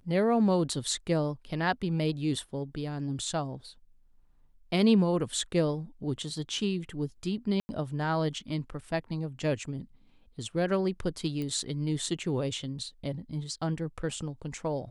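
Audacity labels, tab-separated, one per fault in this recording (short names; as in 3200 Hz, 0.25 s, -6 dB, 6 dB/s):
7.600000	7.690000	gap 90 ms
11.420000	11.420000	pop -23 dBFS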